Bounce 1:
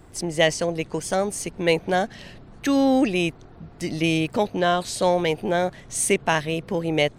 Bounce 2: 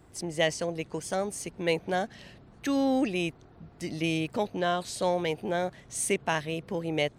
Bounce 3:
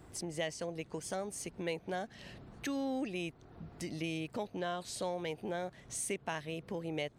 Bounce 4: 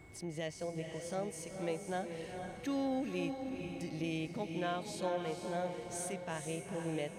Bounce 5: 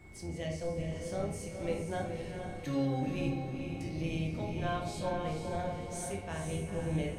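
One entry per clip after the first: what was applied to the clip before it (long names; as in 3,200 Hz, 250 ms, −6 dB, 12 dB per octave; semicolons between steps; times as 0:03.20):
high-pass filter 40 Hz; level −7 dB
downward compressor 2 to 1, threshold −44 dBFS, peak gain reduction 13 dB; level +1 dB
harmonic and percussive parts rebalanced percussive −9 dB; feedback delay with all-pass diffusion 478 ms, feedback 43%, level −5.5 dB; steady tone 2,200 Hz −62 dBFS; level +1 dB
sub-octave generator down 1 octave, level 0 dB; rectangular room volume 130 cubic metres, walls mixed, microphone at 0.92 metres; level −2.5 dB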